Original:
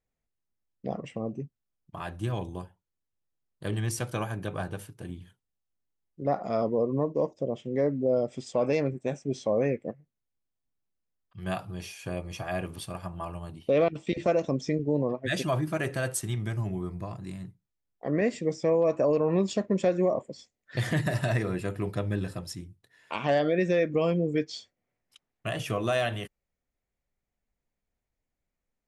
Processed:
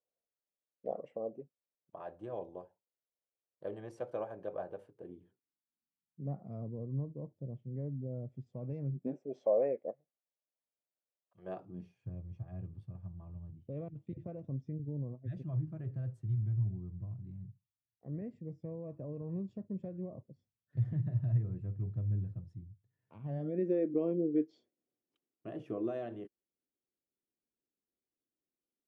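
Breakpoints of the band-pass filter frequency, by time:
band-pass filter, Q 3
4.81 s 550 Hz
6.57 s 120 Hz
8.90 s 120 Hz
9.30 s 600 Hz
11.41 s 600 Hz
12.06 s 110 Hz
23.25 s 110 Hz
23.67 s 330 Hz

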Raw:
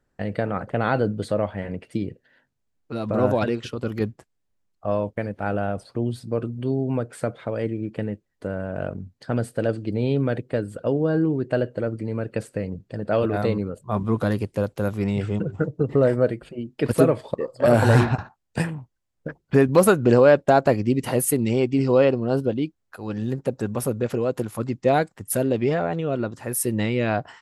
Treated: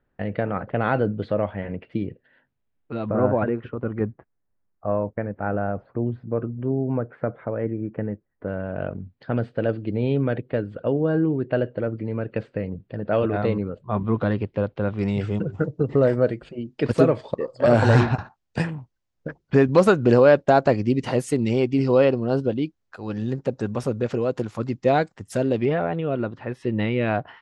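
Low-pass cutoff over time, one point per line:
low-pass 24 dB/octave
3.3 kHz
from 3.09 s 1.9 kHz
from 8.48 s 3.5 kHz
from 14.99 s 6.7 kHz
from 25.65 s 3.5 kHz

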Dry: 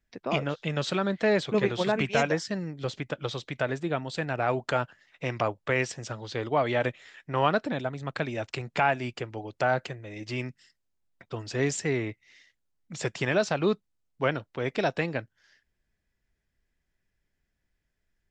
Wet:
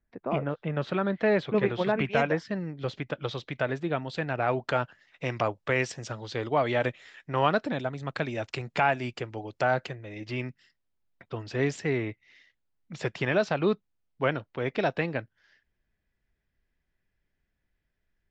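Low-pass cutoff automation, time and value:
0.65 s 1.5 kHz
1.13 s 2.8 kHz
2.54 s 2.8 kHz
3.03 s 4.3 kHz
4.45 s 4.3 kHz
5.30 s 7.7 kHz
9.60 s 7.7 kHz
10.30 s 3.9 kHz

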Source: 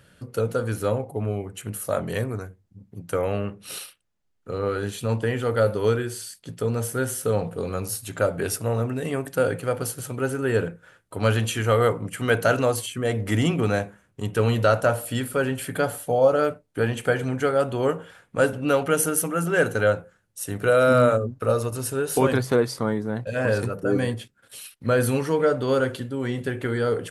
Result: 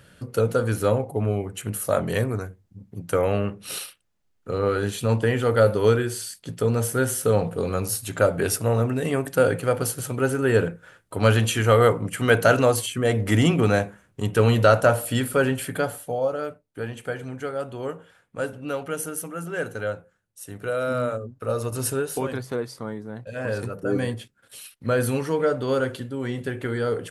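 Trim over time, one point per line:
15.48 s +3 dB
16.38 s -8 dB
21.33 s -8 dB
21.88 s +3.5 dB
22.24 s -8 dB
23.13 s -8 dB
23.95 s -1.5 dB

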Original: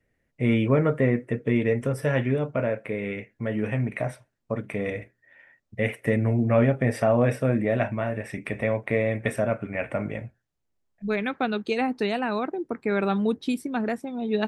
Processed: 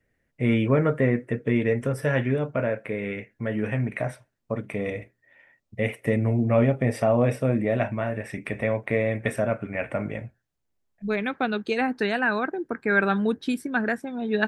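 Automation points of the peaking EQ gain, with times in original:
peaking EQ 1.6 kHz 0.36 oct
4.05 s +3.5 dB
4.95 s -6 dB
7.48 s -6 dB
8.02 s +1 dB
11.27 s +1 dB
11.70 s +7 dB
11.94 s +13.5 dB

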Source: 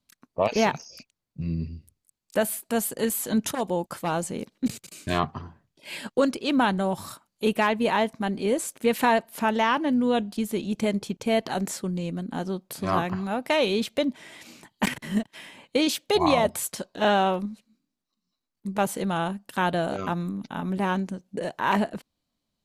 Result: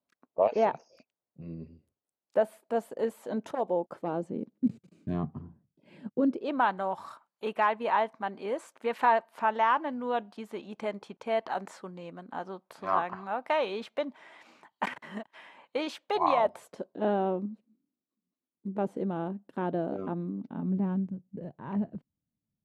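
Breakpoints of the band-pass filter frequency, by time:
band-pass filter, Q 1.3
3.68 s 600 Hz
4.75 s 190 Hz
6.17 s 190 Hz
6.60 s 1 kHz
16.38 s 1 kHz
16.94 s 320 Hz
20.38 s 320 Hz
21.10 s 130 Hz

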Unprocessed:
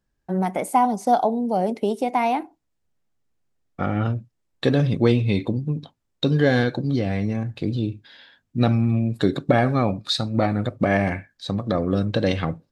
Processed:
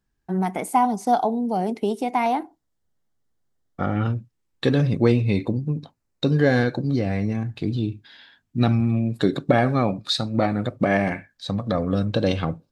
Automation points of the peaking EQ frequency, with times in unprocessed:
peaking EQ -10.5 dB 0.24 oct
560 Hz
from 2.26 s 2.5 kHz
from 3.96 s 640 Hz
from 4.81 s 3.3 kHz
from 7.32 s 530 Hz
from 8.80 s 92 Hz
from 11.32 s 360 Hz
from 12.12 s 1.9 kHz

